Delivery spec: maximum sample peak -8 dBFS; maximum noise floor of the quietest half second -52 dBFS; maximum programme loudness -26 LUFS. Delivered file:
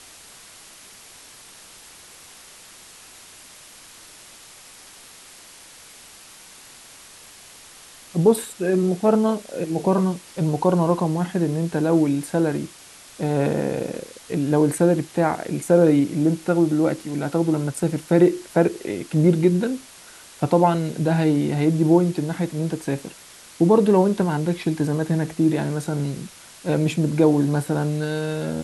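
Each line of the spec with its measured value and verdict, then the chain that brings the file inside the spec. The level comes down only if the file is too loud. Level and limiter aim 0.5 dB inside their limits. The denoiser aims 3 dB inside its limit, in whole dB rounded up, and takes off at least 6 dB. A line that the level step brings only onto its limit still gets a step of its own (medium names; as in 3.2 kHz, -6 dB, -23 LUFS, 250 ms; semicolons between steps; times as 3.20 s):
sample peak -5.0 dBFS: fail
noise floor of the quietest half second -45 dBFS: fail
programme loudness -21.5 LUFS: fail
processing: noise reduction 6 dB, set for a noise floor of -45 dBFS; trim -5 dB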